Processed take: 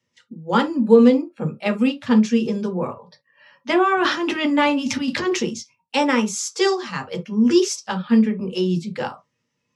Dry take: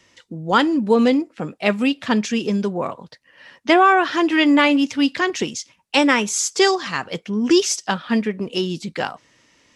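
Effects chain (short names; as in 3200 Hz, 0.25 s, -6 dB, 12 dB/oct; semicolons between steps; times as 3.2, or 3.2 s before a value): spectral noise reduction 16 dB; 3.97–5.4 transient shaper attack -8 dB, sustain +12 dB; on a send: reverb, pre-delay 3 ms, DRR 1.5 dB; on the sum: gain -6 dB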